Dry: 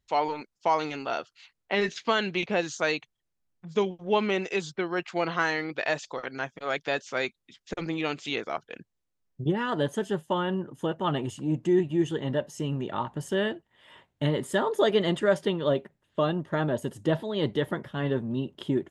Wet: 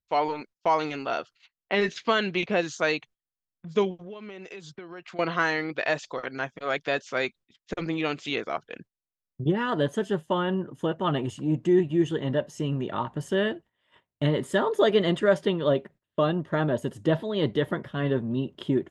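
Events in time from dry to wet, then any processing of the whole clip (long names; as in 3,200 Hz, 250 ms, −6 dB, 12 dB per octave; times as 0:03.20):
0:03.98–0:05.19: downward compressor, threshold −40 dBFS
whole clip: notch filter 850 Hz, Q 12; noise gate −50 dBFS, range −17 dB; high-shelf EQ 7,400 Hz −8.5 dB; level +2 dB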